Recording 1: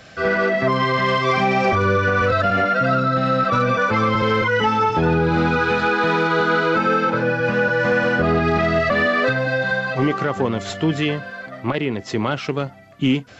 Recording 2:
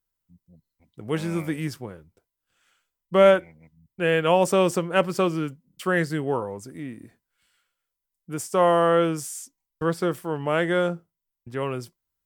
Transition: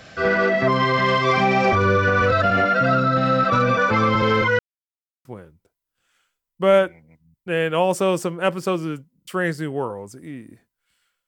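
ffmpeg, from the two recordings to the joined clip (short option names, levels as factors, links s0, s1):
-filter_complex "[0:a]apad=whole_dur=11.27,atrim=end=11.27,asplit=2[s0][s1];[s0]atrim=end=4.59,asetpts=PTS-STARTPTS,afade=t=out:st=4.586:d=0.004:c=hsin[s2];[s1]atrim=start=4.59:end=5.25,asetpts=PTS-STARTPTS,volume=0[s3];[1:a]atrim=start=1.77:end=7.79,asetpts=PTS-STARTPTS,afade=t=in:d=0.004:c=hsin[s4];[s2][s3][s4]concat=n=3:v=0:a=1"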